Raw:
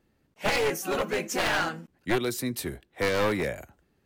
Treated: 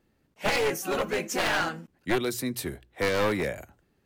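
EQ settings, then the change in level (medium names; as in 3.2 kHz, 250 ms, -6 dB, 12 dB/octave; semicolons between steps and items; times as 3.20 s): hum notches 60/120 Hz; 0.0 dB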